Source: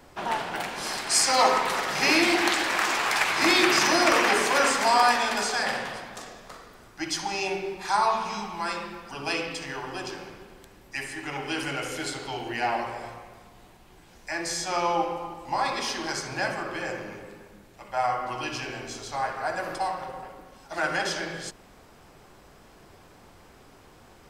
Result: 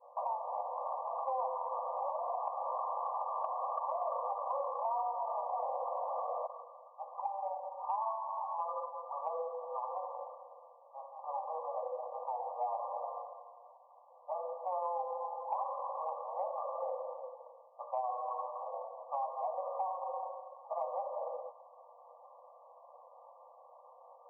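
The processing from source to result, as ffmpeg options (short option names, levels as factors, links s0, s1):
-filter_complex "[0:a]asettb=1/sr,asplit=3[s0][s1][s2];[s0]atrim=end=4.914[s3];[s1]atrim=start=4.91:end=6.47,asetpts=PTS-STARTPTS,afade=t=in:d=0.004:c=qsin,afade=t=out:st=1.556:d=0.004:c=qsin,aeval=exprs='val(0)+0.5*0.0596*sgn(val(0))':c=same[s4];[s2]atrim=start=6.466[s5];[s3][s4]acrossfade=d=0.004:c1=hsin:c2=qsin[s6];[s6][s5]acrossfade=d=0.004:c1=qsin:c2=hsin,agate=range=0.0224:threshold=0.00316:ratio=3:detection=peak,afftfilt=real='re*between(b*sr/4096,480,1200)':imag='im*between(b*sr/4096,480,1200)':win_size=4096:overlap=0.75,acompressor=threshold=0.0158:ratio=6,volume=1.26"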